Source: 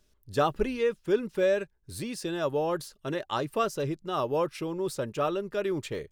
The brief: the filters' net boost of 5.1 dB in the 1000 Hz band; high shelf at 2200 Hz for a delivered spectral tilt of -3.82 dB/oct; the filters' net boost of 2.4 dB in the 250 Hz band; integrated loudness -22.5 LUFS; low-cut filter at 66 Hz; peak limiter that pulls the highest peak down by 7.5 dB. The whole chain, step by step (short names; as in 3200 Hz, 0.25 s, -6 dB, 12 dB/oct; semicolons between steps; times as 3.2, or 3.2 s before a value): HPF 66 Hz; bell 250 Hz +3 dB; bell 1000 Hz +8.5 dB; high shelf 2200 Hz -8.5 dB; gain +7 dB; limiter -10.5 dBFS